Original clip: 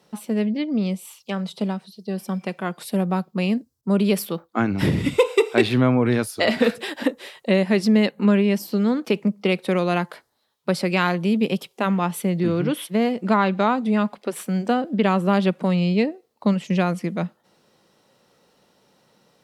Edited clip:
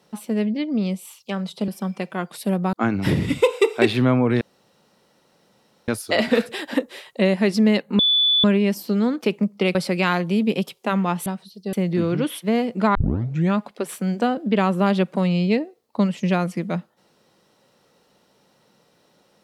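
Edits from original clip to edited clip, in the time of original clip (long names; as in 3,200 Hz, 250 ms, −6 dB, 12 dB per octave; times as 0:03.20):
0:01.68–0:02.15: move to 0:12.20
0:03.20–0:04.49: remove
0:06.17: splice in room tone 1.47 s
0:08.28: insert tone 3,470 Hz −14.5 dBFS 0.45 s
0:09.59–0:10.69: remove
0:13.42: tape start 0.60 s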